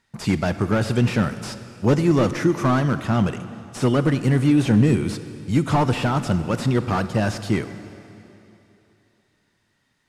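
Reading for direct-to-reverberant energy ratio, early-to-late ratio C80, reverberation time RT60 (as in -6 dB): 11.5 dB, 12.5 dB, 3.0 s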